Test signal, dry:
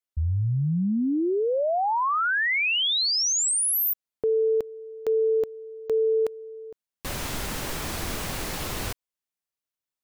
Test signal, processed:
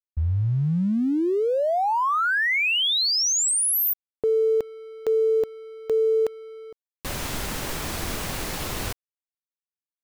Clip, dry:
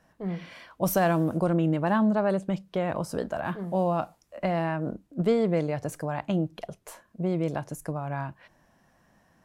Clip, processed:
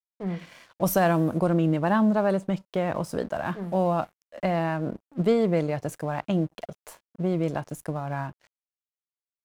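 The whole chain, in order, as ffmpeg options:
-af "aeval=exprs='sgn(val(0))*max(abs(val(0))-0.00299,0)':c=same,volume=2dB"

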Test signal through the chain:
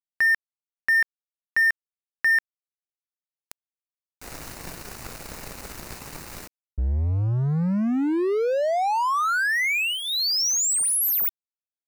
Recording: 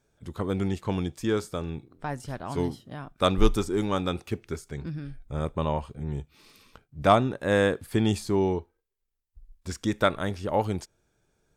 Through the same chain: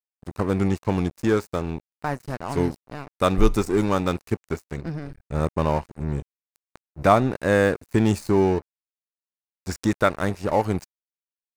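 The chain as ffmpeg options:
-filter_complex "[0:a]asplit=2[a][b];[b]alimiter=limit=-18dB:level=0:latency=1:release=187,volume=3dB[c];[a][c]amix=inputs=2:normalize=0,aeval=exprs='sgn(val(0))*max(abs(val(0))-0.0237,0)':c=same,equalizer=f=3.3k:t=o:w=0.25:g=-10.5"

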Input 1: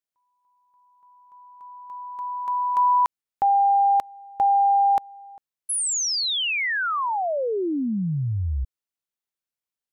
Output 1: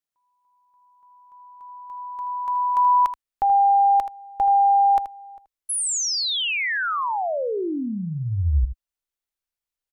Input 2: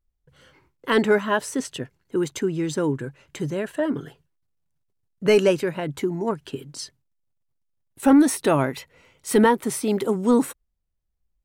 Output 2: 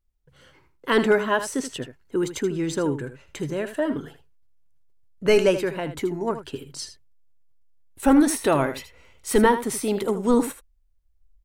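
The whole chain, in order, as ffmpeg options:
-filter_complex "[0:a]asplit=2[a][b];[b]aecho=0:1:79:0.266[c];[a][c]amix=inputs=2:normalize=0,asubboost=boost=6.5:cutoff=55"

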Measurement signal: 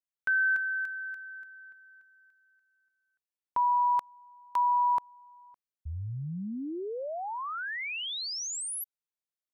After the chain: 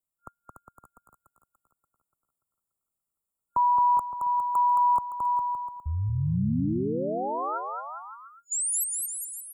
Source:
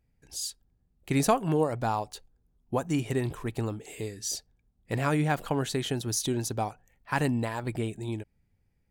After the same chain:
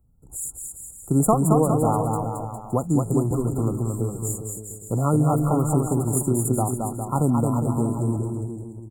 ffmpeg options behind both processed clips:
-filter_complex "[0:a]bass=f=250:g=7,treble=f=4k:g=5,aecho=1:1:220|407|566|701.1|815.9:0.631|0.398|0.251|0.158|0.1,acrossover=split=140|5600[a][b][c];[a]alimiter=level_in=6dB:limit=-24dB:level=0:latency=1:release=40,volume=-6dB[d];[c]aeval=exprs='0.2*(cos(1*acos(clip(val(0)/0.2,-1,1)))-cos(1*PI/2))+0.00708*(cos(3*acos(clip(val(0)/0.2,-1,1)))-cos(3*PI/2))':c=same[e];[d][b][e]amix=inputs=3:normalize=0,afftfilt=real='re*(1-between(b*sr/4096,1400,6900))':imag='im*(1-between(b*sr/4096,1400,6900))':win_size=4096:overlap=0.75,volume=3.5dB"

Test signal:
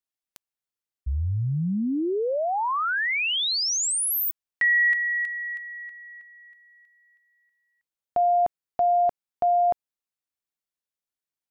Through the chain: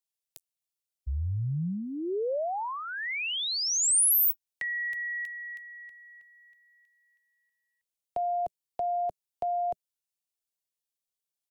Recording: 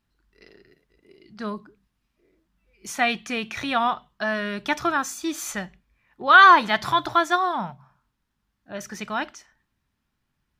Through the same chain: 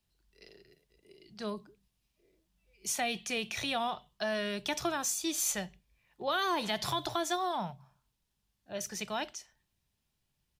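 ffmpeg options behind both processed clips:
-filter_complex "[0:a]firequalizer=gain_entry='entry(170,0);entry(250,-7);entry(390,0);entry(630,1);entry(1300,-8);entry(2800,3);entry(5100,6);entry(9100,11)':delay=0.05:min_phase=1,acrossover=split=130|480|6900[a][b][c][d];[c]acompressor=threshold=-26dB:ratio=6:attack=5.6:release=151:knee=1:detection=peak[e];[d]flanger=delay=9.4:depth=9.4:regen=37:speed=0.41:shape=sinusoidal[f];[a][b][e][f]amix=inputs=4:normalize=0,volume=-4.5dB"

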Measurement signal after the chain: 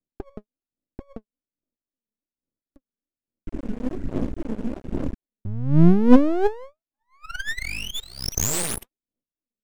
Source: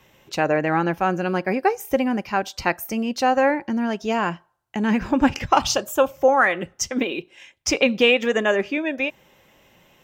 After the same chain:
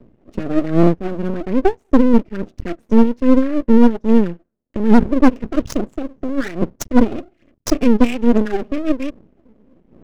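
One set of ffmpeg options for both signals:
-filter_complex "[0:a]equalizer=f=125:t=o:w=1:g=-4,equalizer=f=250:t=o:w=1:g=12,equalizer=f=500:t=o:w=1:g=8,equalizer=f=1k:t=o:w=1:g=-12,equalizer=f=2k:t=o:w=1:g=-6,equalizer=f=4k:t=o:w=1:g=-11,equalizer=f=8k:t=o:w=1:g=5,asplit=2[a][b];[b]acompressor=threshold=-24dB:ratio=5,volume=0dB[c];[a][c]amix=inputs=2:normalize=0,asuperstop=centerf=730:order=8:qfactor=0.68,aphaser=in_gain=1:out_gain=1:delay=4.8:decay=0.65:speed=1.2:type=sinusoidal,asoftclip=type=hard:threshold=-1dB,adynamicsmooth=sensitivity=1.5:basefreq=820,aeval=exprs='max(val(0),0)':c=same"

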